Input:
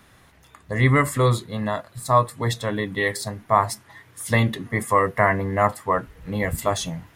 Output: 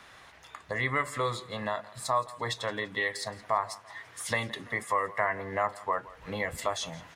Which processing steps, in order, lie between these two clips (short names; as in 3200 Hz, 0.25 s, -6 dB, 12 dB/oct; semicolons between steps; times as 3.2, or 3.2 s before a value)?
three-band isolator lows -13 dB, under 480 Hz, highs -14 dB, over 7500 Hz; compressor 2:1, threshold -39 dBFS, peak gain reduction 14.5 dB; feedback echo 0.169 s, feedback 40%, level -19.5 dB; gain +4 dB